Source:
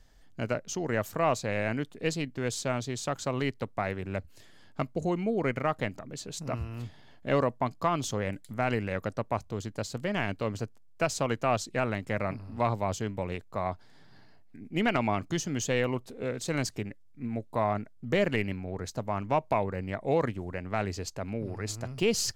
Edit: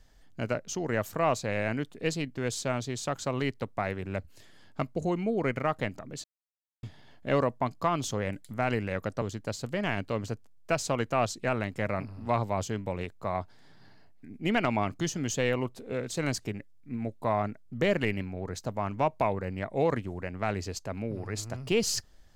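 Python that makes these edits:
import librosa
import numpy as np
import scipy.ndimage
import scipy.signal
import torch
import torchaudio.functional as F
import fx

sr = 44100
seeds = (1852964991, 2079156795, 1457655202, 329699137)

y = fx.edit(x, sr, fx.silence(start_s=6.24, length_s=0.59),
    fx.cut(start_s=9.22, length_s=0.31), tone=tone)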